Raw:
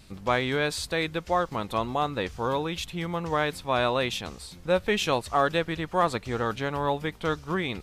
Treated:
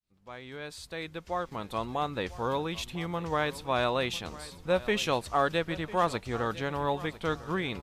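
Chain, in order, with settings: fade-in on the opening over 2.31 s; feedback delay 999 ms, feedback 33%, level -17.5 dB; trim -3 dB

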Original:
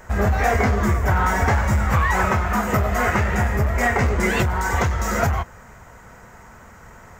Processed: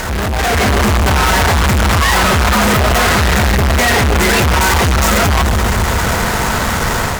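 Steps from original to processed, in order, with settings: peak limiter -17 dBFS, peak gain reduction 8.5 dB; feedback echo behind a low-pass 134 ms, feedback 65%, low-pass 490 Hz, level -12 dB; fuzz box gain 53 dB, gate -47 dBFS; level rider gain up to 6 dB; trim -3 dB

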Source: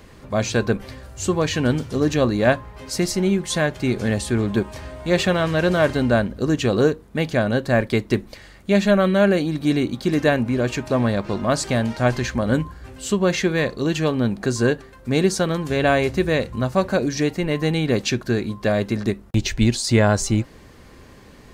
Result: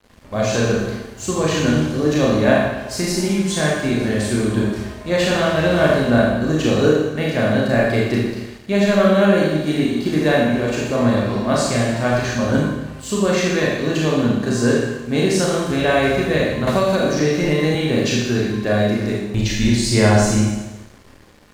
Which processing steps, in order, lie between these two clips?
Schroeder reverb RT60 1.1 s, combs from 26 ms, DRR -4.5 dB; crossover distortion -42.5 dBFS; 16.67–17.75 s: three bands compressed up and down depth 100%; trim -2.5 dB

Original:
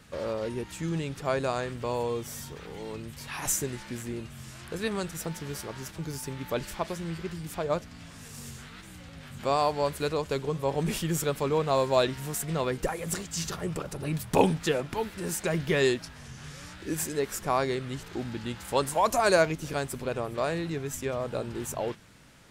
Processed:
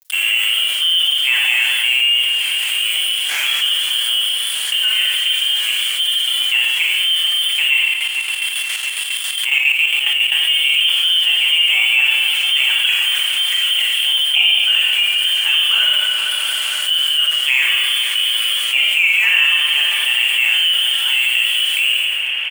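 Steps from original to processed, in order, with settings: median filter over 15 samples; bass shelf 290 Hz -3.5 dB; frequency inversion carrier 3.3 kHz; high-pass 120 Hz 12 dB/octave; crossover distortion -50 dBFS; tilt EQ +4.5 dB/octave; comb 6.7 ms, depth 45%; feedback echo behind a low-pass 230 ms, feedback 77%, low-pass 2.3 kHz, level -13 dB; Schroeder reverb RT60 0.85 s, combs from 28 ms, DRR -1 dB; 7.87–10.32 s: square tremolo 7.3 Hz, depth 65%, duty 50%; level flattener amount 70%; trim -1.5 dB

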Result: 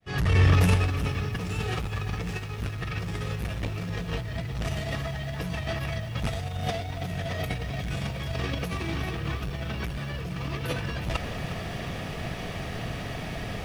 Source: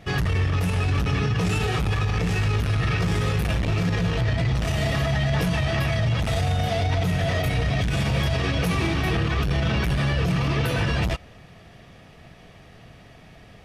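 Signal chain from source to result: fade-in on the opening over 1.30 s; compressor with a negative ratio -30 dBFS, ratio -0.5; bit-crushed delay 359 ms, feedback 55%, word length 8-bit, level -13 dB; trim +4 dB

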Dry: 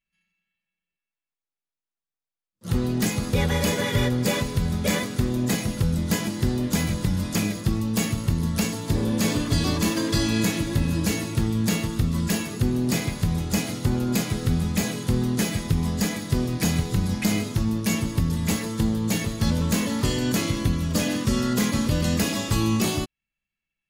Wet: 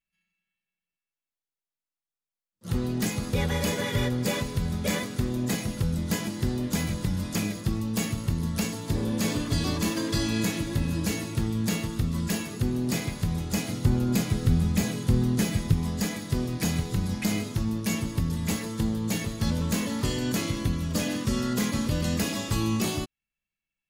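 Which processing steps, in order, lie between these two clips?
13.68–15.74 s: bass shelf 210 Hz +6.5 dB; trim -4 dB

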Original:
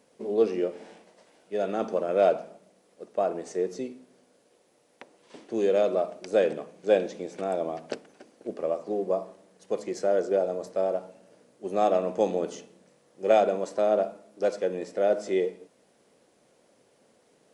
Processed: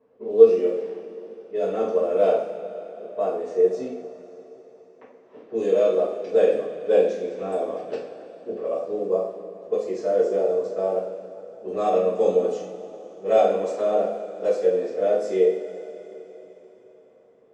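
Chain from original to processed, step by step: level-controlled noise filter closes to 1.5 kHz, open at -22.5 dBFS; peaking EQ 480 Hz +8 dB 0.38 oct; two-slope reverb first 0.46 s, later 4.1 s, from -18 dB, DRR -10 dB; trim -10.5 dB

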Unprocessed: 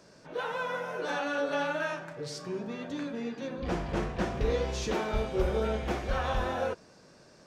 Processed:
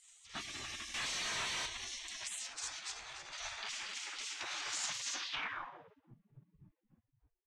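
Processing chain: on a send: frequency-shifting echo 294 ms, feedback 48%, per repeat -74 Hz, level -7 dB; 2.26–3.37 s: on the sum: compressor with a negative ratio -38 dBFS, ratio -0.5; peak limiter -26.5 dBFS, peak gain reduction 10.5 dB; spectral gate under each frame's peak -25 dB weak; 0.94–1.66 s: overdrive pedal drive 35 dB, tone 3 kHz, clips at -39 dBFS; low-pass sweep 7.8 kHz -> 140 Hz, 5.12–6.16 s; trim +7.5 dB

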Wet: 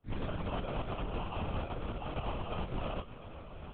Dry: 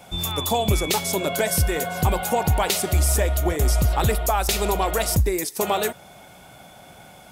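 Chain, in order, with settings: fade-in on the opening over 0.91 s; compression 4:1, threshold -31 dBFS, peak gain reduction 13.5 dB; plain phase-vocoder stretch 0.51×; tilt EQ +3.5 dB/octave; sample-rate reducer 1.9 kHz, jitter 0%; feedback comb 120 Hz, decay 0.21 s, harmonics all, mix 80%; LPC vocoder at 8 kHz whisper; bass shelf 200 Hz +6 dB; peak limiter -30 dBFS, peak gain reduction 9 dB; trim +3 dB

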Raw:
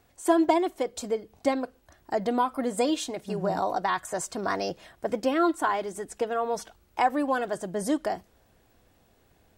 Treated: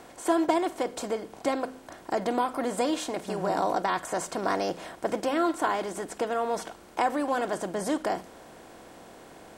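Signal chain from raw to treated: spectral levelling over time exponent 0.6; de-hum 86.79 Hz, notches 3; trim -4.5 dB

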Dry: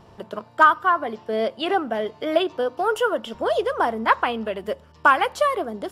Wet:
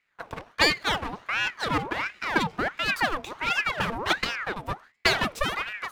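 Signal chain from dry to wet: comb filter that takes the minimum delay 0.39 ms; gate with hold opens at -39 dBFS; ring modulator with a swept carrier 1.3 kHz, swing 65%, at 1.4 Hz

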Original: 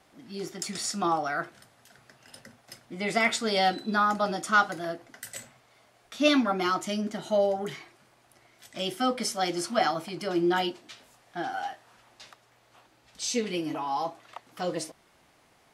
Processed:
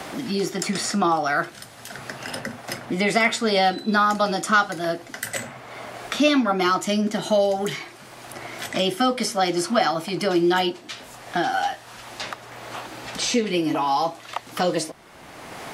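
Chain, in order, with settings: three bands compressed up and down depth 70%; trim +7 dB

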